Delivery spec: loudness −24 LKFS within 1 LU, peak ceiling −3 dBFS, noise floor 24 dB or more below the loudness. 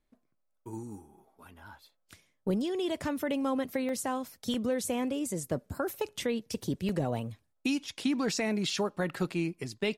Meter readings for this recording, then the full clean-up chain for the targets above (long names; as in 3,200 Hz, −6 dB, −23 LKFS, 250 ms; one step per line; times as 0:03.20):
number of dropouts 4; longest dropout 2.1 ms; integrated loudness −32.5 LKFS; sample peak −19.0 dBFS; target loudness −24.0 LKFS
→ repair the gap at 0:03.89/0:04.54/0:06.89/0:08.70, 2.1 ms
level +8.5 dB